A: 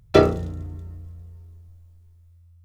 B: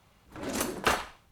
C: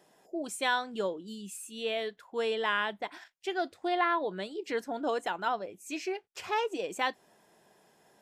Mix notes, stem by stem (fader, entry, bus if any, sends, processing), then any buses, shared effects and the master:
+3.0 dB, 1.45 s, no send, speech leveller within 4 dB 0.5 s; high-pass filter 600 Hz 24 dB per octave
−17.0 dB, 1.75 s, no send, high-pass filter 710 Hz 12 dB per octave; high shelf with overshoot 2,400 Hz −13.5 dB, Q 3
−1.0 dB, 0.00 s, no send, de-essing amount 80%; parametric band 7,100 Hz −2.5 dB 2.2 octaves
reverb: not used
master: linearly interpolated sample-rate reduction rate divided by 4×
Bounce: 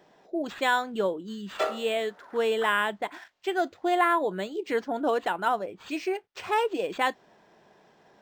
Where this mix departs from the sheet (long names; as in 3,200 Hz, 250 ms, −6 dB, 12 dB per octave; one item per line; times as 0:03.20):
stem A +3.0 dB → −3.5 dB
stem C −1.0 dB → +5.5 dB